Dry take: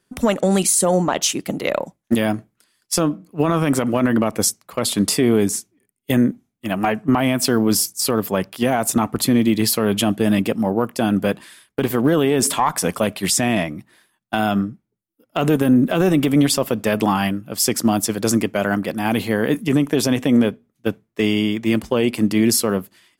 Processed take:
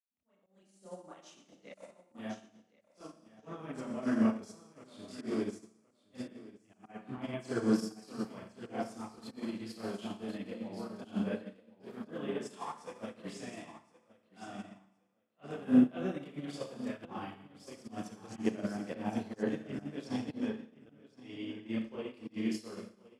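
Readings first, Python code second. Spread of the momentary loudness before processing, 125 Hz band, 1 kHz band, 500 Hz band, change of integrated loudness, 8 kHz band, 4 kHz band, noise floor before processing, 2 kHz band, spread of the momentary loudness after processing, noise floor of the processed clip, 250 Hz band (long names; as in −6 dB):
7 LU, −22.5 dB, −22.5 dB, −20.5 dB, −18.0 dB, −33.5 dB, −26.0 dB, −74 dBFS, −22.0 dB, 22 LU, −72 dBFS, −17.0 dB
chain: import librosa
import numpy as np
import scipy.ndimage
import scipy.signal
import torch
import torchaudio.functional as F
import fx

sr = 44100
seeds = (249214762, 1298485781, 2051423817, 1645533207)

y = fx.fade_in_head(x, sr, length_s=1.44)
y = scipy.signal.sosfilt(scipy.signal.butter(2, 64.0, 'highpass', fs=sr, output='sos'), y)
y = fx.low_shelf(y, sr, hz=160.0, db=-4.5)
y = fx.chorus_voices(y, sr, voices=6, hz=1.1, base_ms=29, depth_ms=3.0, mix_pct=60)
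y = fx.rev_schroeder(y, sr, rt60_s=1.3, comb_ms=28, drr_db=2.0)
y = fx.auto_swell(y, sr, attack_ms=107.0)
y = scipy.signal.sosfilt(scipy.signal.butter(2, 7300.0, 'lowpass', fs=sr, output='sos'), y)
y = fx.high_shelf(y, sr, hz=4700.0, db=-6.0)
y = fx.echo_feedback(y, sr, ms=1068, feedback_pct=24, wet_db=-8.0)
y = fx.upward_expand(y, sr, threshold_db=-30.0, expansion=2.5)
y = y * librosa.db_to_amplitude(-8.0)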